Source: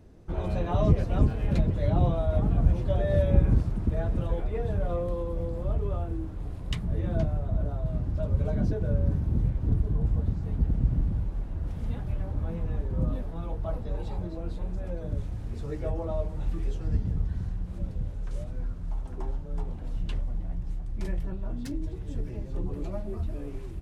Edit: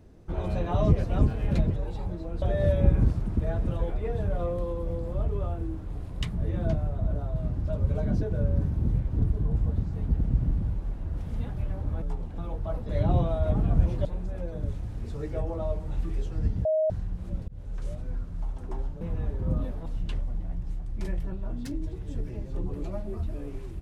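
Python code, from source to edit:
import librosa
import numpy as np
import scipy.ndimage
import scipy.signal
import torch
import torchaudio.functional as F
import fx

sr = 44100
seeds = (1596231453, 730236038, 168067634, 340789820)

y = fx.edit(x, sr, fx.swap(start_s=1.76, length_s=1.16, other_s=13.88, other_length_s=0.66),
    fx.swap(start_s=12.52, length_s=0.85, other_s=19.5, other_length_s=0.36),
    fx.bleep(start_s=17.14, length_s=0.25, hz=628.0, db=-21.0),
    fx.fade_in_span(start_s=17.97, length_s=0.34, curve='qsin'), tone=tone)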